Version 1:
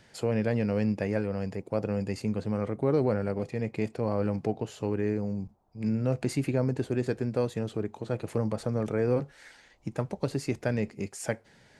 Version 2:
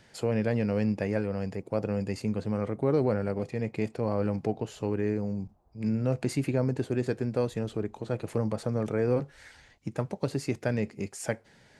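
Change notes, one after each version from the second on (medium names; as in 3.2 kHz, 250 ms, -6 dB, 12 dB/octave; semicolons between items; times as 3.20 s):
background: entry -1.15 s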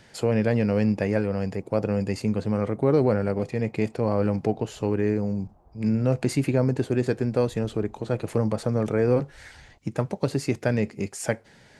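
speech +5.0 dB; background +10.5 dB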